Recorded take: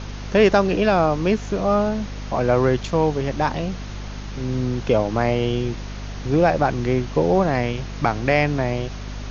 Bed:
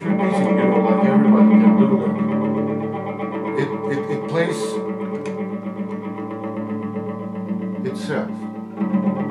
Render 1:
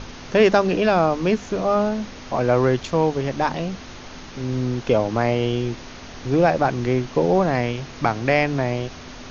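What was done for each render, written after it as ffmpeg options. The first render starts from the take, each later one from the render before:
-af "bandreject=f=50:t=h:w=6,bandreject=f=100:t=h:w=6,bandreject=f=150:t=h:w=6,bandreject=f=200:t=h:w=6"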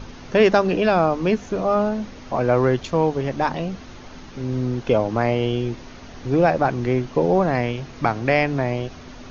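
-af "afftdn=nr=6:nf=-39"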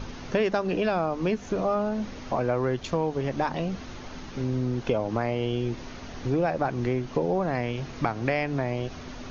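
-af "acompressor=threshold=0.0631:ratio=3"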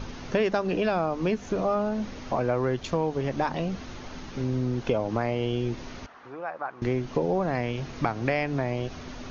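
-filter_complex "[0:a]asettb=1/sr,asplit=3[s0][s1][s2];[s0]atrim=end=6.064[s3];[s1]atrim=start=6.06:end=6.82,asetpts=PTS-STARTPTS,afade=t=in:d=0.004:c=qsin,afade=t=out:st=0.756:d=0.004:c=qsin,bandpass=f=1200:t=q:w=1.9[s4];[s2]atrim=start=6.816[s5];[s3][s4]acrossfade=d=0.004:c1=hsin:c2=qsin[s6];[s6][s5]acrossfade=d=0.004:c1=qsin:c2=hsin"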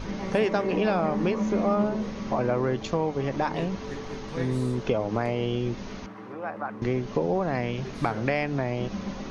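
-filter_complex "[1:a]volume=0.178[s0];[0:a][s0]amix=inputs=2:normalize=0"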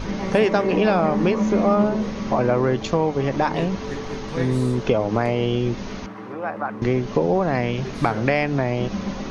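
-af "volume=2"

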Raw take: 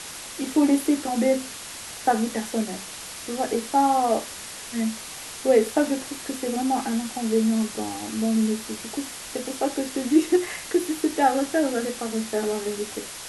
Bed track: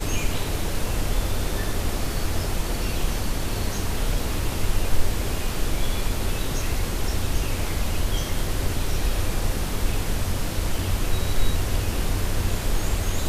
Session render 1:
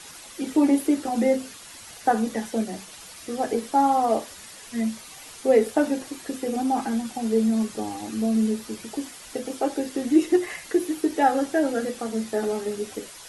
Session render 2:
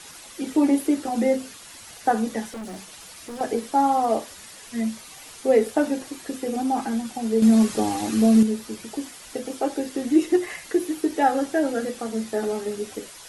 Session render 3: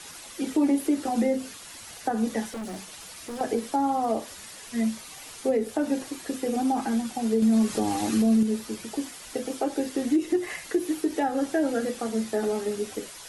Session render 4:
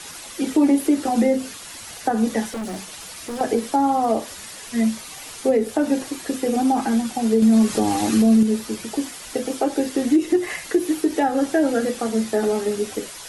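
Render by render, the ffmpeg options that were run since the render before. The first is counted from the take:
-af "afftdn=nr=9:nf=-38"
-filter_complex "[0:a]asettb=1/sr,asplit=3[s0][s1][s2];[s0]atrim=end=2.484[s3];[s1]atrim=start=2.48:end=3.41,asetpts=PTS-STARTPTS,afade=t=in:d=0.004:c=qsin,afade=t=out:st=0.926:d=0.004:c=qsin,asoftclip=type=hard:threshold=0.0237[s4];[s2]atrim=start=3.406[s5];[s3][s4]acrossfade=d=0.004:c1=hsin:c2=qsin[s6];[s6][s5]acrossfade=d=0.004:c1=qsin:c2=hsin,asettb=1/sr,asplit=3[s7][s8][s9];[s7]atrim=end=7.424[s10];[s8]atrim=start=7.42:end=8.43,asetpts=PTS-STARTPTS,afade=t=in:d=0.004:c=qsin,afade=t=out:st=1.006:d=0.004:c=qsin,acontrast=82[s11];[s9]atrim=start=8.426[s12];[s10][s11]acrossfade=d=0.004:c1=hsin:c2=qsin[s13];[s13][s12]acrossfade=d=0.004:c1=qsin:c2=hsin"
-filter_complex "[0:a]acrossover=split=320[s0][s1];[s1]acompressor=threshold=0.0631:ratio=6[s2];[s0][s2]amix=inputs=2:normalize=0,alimiter=limit=0.178:level=0:latency=1:release=135"
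-af "volume=2"

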